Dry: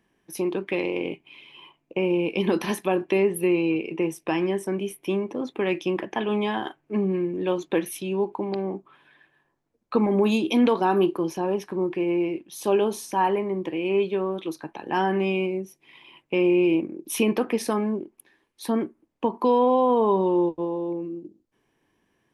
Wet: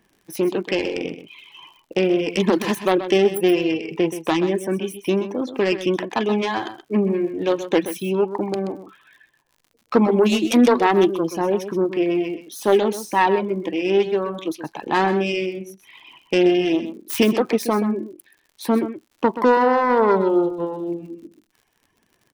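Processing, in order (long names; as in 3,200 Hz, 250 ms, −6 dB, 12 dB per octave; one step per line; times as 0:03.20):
phase distortion by the signal itself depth 0.18 ms
reverb reduction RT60 1 s
surface crackle 71 per second −49 dBFS
on a send: single-tap delay 128 ms −11.5 dB
on the sum: level +6 dB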